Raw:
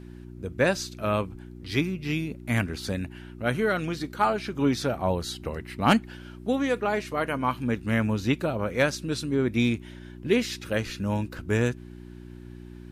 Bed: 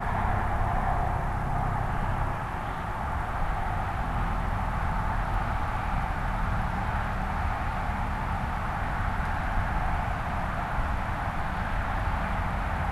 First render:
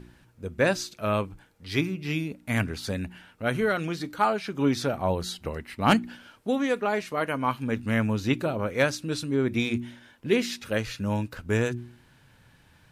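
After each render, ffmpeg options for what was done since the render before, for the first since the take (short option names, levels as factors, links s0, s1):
-af "bandreject=f=60:t=h:w=4,bandreject=f=120:t=h:w=4,bandreject=f=180:t=h:w=4,bandreject=f=240:t=h:w=4,bandreject=f=300:t=h:w=4,bandreject=f=360:t=h:w=4"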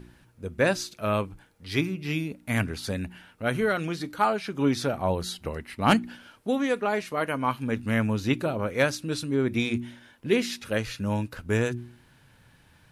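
-af "aexciter=amount=1.2:drive=4:freq=9900"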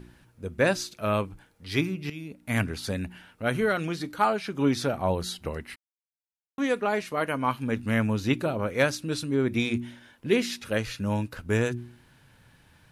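-filter_complex "[0:a]asplit=4[s0][s1][s2][s3];[s0]atrim=end=2.1,asetpts=PTS-STARTPTS,afade=t=out:st=2.096:d=0.004:c=hsin:silence=0.16788[s4];[s1]atrim=start=2.1:end=5.76,asetpts=PTS-STARTPTS,afade=t=in:d=0.47:silence=0.16788,afade=t=out:st=3.656:d=0.004:c=hsin[s5];[s2]atrim=start=5.76:end=6.58,asetpts=PTS-STARTPTS,volume=0[s6];[s3]atrim=start=6.58,asetpts=PTS-STARTPTS,afade=t=in:d=0.004:c=hsin[s7];[s4][s5][s6][s7]concat=n=4:v=0:a=1"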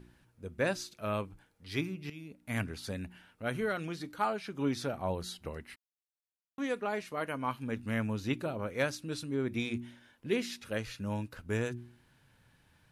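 -af "volume=0.398"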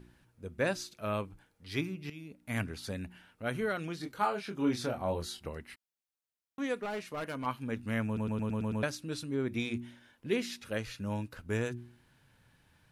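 -filter_complex "[0:a]asettb=1/sr,asplit=3[s0][s1][s2];[s0]atrim=end=4.004[s3];[s1]atrim=start=4:end=5.44,asetpts=PTS-STARTPTS,afade=t=in:d=0.004:c=qsin,afade=t=out:st=1.436:d=0.004:c=qsin,asplit=2[s4][s5];[s5]adelay=25,volume=0.562[s6];[s4][s6]amix=inputs=2:normalize=0,atrim=end_sample=63504[s7];[s2]atrim=start=5.436[s8];[s3][s7]acrossfade=d=0.004:c1=hsin:c2=qsin[s9];[s9][s8]acrossfade=d=0.004:c1=qsin:c2=hsin,asettb=1/sr,asplit=3[s10][s11][s12];[s10]atrim=end=6.824[s13];[s11]atrim=start=6.82:end=7.46,asetpts=PTS-STARTPTS,afade=t=in:d=0.004:c=qsin,afade=t=out:st=0.636:d=0.004:c=qsin,asoftclip=type=hard:threshold=0.0224[s14];[s12]atrim=start=7.456[s15];[s13][s14]acrossfade=d=0.004:c1=hsin:c2=qsin[s16];[s16][s15]acrossfade=d=0.004:c1=qsin:c2=hsin,asplit=8[s17][s18][s19][s20][s21][s22][s23][s24];[s17]atrim=end=8.172[s25];[s18]atrim=start=8.058:end=8.172[s26];[s19]atrim=start=8.058:end=8.172[s27];[s20]atrim=start=8.058:end=8.172[s28];[s21]atrim=start=8.058:end=8.172[s29];[s22]atrim=start=8.058:end=8.172[s30];[s23]atrim=start=8.058:end=8.172[s31];[s24]atrim=start=8.828[s32];[s25][s26]acrossfade=d=0.004:c1=hsin:c2=hsin[s33];[s33][s27]acrossfade=d=0.004:c1=hsin:c2=hsin[s34];[s34][s28]acrossfade=d=0.004:c1=hsin:c2=hsin[s35];[s35][s29]acrossfade=d=0.004:c1=hsin:c2=hsin[s36];[s36][s30]acrossfade=d=0.004:c1=hsin:c2=hsin[s37];[s37][s31]acrossfade=d=0.004:c1=hsin:c2=hsin[s38];[s38][s32]acrossfade=d=0.004:c1=hsin:c2=hsin"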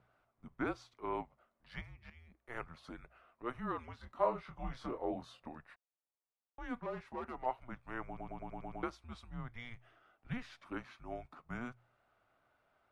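-af "bandpass=f=980:t=q:w=1.4:csg=0,afreqshift=-240"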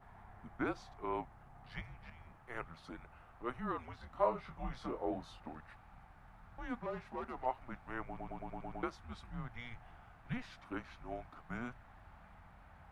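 -filter_complex "[1:a]volume=0.0316[s0];[0:a][s0]amix=inputs=2:normalize=0"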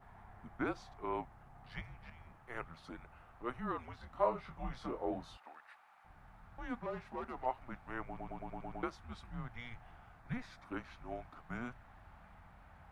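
-filter_complex "[0:a]asettb=1/sr,asplit=3[s0][s1][s2];[s0]atrim=end=5.374[s3];[s1]atrim=start=5.37:end=6.05,asetpts=PTS-STARTPTS,afade=t=in:d=0.004:c=qsin,afade=t=out:st=0.676:d=0.004:c=qsin,highpass=800[s4];[s2]atrim=start=6.046[s5];[s3][s4]acrossfade=d=0.004:c1=hsin:c2=qsin[s6];[s6][s5]acrossfade=d=0.004:c1=qsin:c2=hsin,asettb=1/sr,asplit=3[s7][s8][s9];[s7]atrim=end=10.194[s10];[s8]atrim=start=10.19:end=10.68,asetpts=PTS-STARTPTS,afade=t=in:d=0.004:c=qsin,afade=t=out:st=0.486:d=0.004:c=qsin,equalizer=f=2900:t=o:w=0.28:g=-11.5[s11];[s9]atrim=start=10.676[s12];[s10][s11]acrossfade=d=0.004:c1=hsin:c2=qsin[s13];[s13][s12]acrossfade=d=0.004:c1=qsin:c2=hsin"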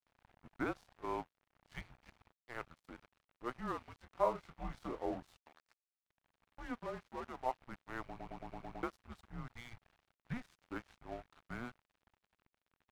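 -af "aeval=exprs='sgn(val(0))*max(abs(val(0))-0.00266,0)':c=same"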